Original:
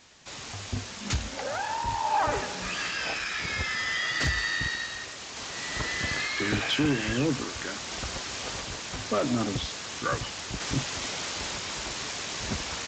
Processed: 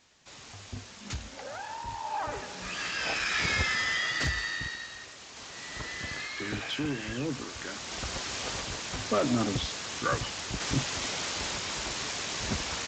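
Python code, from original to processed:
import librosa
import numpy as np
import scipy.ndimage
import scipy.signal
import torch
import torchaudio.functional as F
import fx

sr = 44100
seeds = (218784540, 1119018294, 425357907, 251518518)

y = fx.gain(x, sr, db=fx.line((2.38, -8.0), (3.43, 4.0), (4.79, -7.0), (7.2, -7.0), (8.25, 0.0)))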